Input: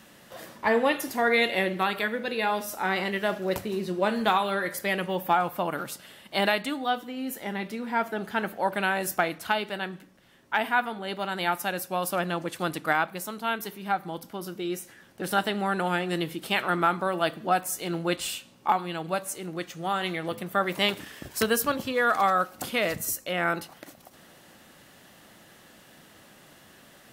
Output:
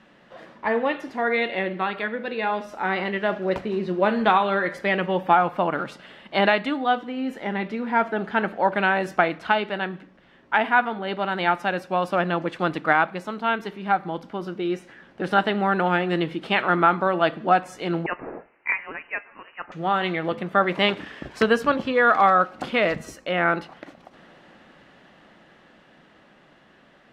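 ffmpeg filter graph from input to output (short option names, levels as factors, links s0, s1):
-filter_complex "[0:a]asettb=1/sr,asplit=3[s0][s1][s2];[s0]atrim=end=18.064[s3];[s1]atrim=start=18.06:end=19.72,asetpts=PTS-STARTPTS,afade=t=in:d=0.004:c=qsin,afade=t=out:st=1.656:d=0.004:c=qsin,highpass=1200,aemphasis=mode=production:type=50fm,lowpass=f=2700:t=q:w=0.5098,lowpass=f=2700:t=q:w=0.6013,lowpass=f=2700:t=q:w=0.9,lowpass=f=2700:t=q:w=2.563,afreqshift=-3200[s4];[s2]atrim=start=19.716[s5];[s3][s4]acrossfade=d=0.004:c1=hsin:c2=qsin[s6];[s6][s5]acrossfade=d=0.004:c1=qsin:c2=hsin,lowpass=2700,equalizer=f=100:t=o:w=0.45:g=-11.5,dynaudnorm=f=500:g=13:m=2.11"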